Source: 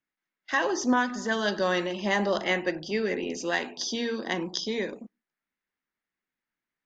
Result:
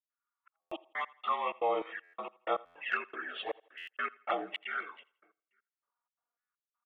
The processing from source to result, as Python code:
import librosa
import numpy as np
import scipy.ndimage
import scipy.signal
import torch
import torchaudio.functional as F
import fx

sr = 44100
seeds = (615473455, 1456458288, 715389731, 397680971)

y = fx.partial_stretch(x, sr, pct=80)
y = fx.filter_lfo_highpass(y, sr, shape='saw_down', hz=1.1, low_hz=560.0, high_hz=1800.0, q=2.6)
y = fx.env_flanger(y, sr, rest_ms=4.2, full_db=-26.5)
y = fx.rider(y, sr, range_db=5, speed_s=0.5)
y = fx.echo_feedback(y, sr, ms=427, feedback_pct=30, wet_db=-24.0)
y = fx.step_gate(y, sr, bpm=158, pattern='.xxxx..x..x..xxx', floor_db=-60.0, edge_ms=4.5)
y = fx.env_lowpass(y, sr, base_hz=1700.0, full_db=-33.5)
y = fx.echo_thinned(y, sr, ms=83, feedback_pct=35, hz=210.0, wet_db=-22.5)
y = fx.buffer_glitch(y, sr, at_s=(0.61, 2.03, 2.65, 3.77, 5.72, 6.39), block=512, repeats=8)